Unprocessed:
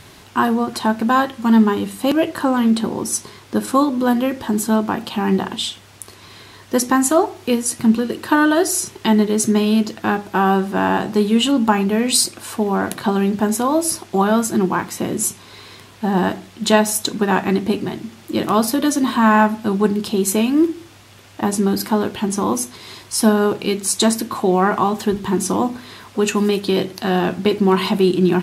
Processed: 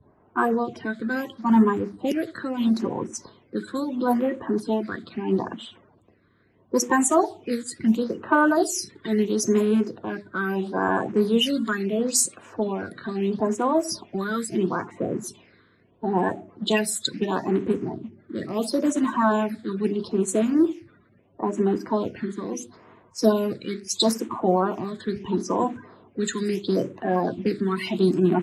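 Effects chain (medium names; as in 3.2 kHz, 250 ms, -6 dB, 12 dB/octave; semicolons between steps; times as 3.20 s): coarse spectral quantiser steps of 30 dB; high-pass 180 Hz 6 dB/octave; band-stop 820 Hz, Q 12; level-controlled noise filter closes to 890 Hz, open at -12.5 dBFS; in parallel at +1 dB: compression, threshold -28 dBFS, peak gain reduction 17 dB; on the sum: phase shifter stages 8, 0.75 Hz, lowest notch 790–4800 Hz; three bands expanded up and down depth 40%; trim -6 dB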